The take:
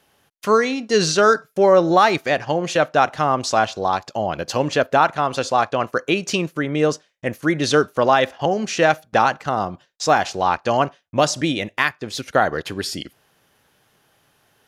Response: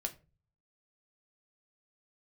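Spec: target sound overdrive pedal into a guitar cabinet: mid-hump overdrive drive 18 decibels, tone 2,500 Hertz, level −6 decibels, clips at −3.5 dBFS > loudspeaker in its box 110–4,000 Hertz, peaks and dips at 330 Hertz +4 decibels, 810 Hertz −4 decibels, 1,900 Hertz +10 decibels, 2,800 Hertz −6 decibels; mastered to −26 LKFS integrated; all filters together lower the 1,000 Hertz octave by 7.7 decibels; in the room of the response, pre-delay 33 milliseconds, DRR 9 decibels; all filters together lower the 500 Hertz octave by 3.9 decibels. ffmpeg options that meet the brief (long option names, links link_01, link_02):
-filter_complex "[0:a]equalizer=frequency=500:width_type=o:gain=-3,equalizer=frequency=1000:width_type=o:gain=-8,asplit=2[link_01][link_02];[1:a]atrim=start_sample=2205,adelay=33[link_03];[link_02][link_03]afir=irnorm=-1:irlink=0,volume=-9dB[link_04];[link_01][link_04]amix=inputs=2:normalize=0,asplit=2[link_05][link_06];[link_06]highpass=frequency=720:poles=1,volume=18dB,asoftclip=type=tanh:threshold=-3.5dB[link_07];[link_05][link_07]amix=inputs=2:normalize=0,lowpass=frequency=2500:poles=1,volume=-6dB,highpass=110,equalizer=frequency=330:width_type=q:width=4:gain=4,equalizer=frequency=810:width_type=q:width=4:gain=-4,equalizer=frequency=1900:width_type=q:width=4:gain=10,equalizer=frequency=2800:width_type=q:width=4:gain=-6,lowpass=frequency=4000:width=0.5412,lowpass=frequency=4000:width=1.3066,volume=-10dB"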